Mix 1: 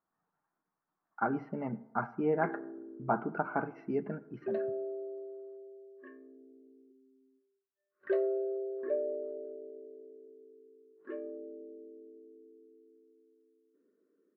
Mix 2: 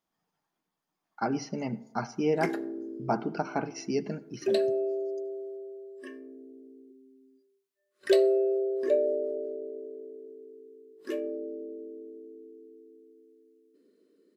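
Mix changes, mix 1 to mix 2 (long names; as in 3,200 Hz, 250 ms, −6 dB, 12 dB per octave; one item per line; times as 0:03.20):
speech −5.0 dB
master: remove transistor ladder low-pass 1,700 Hz, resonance 45%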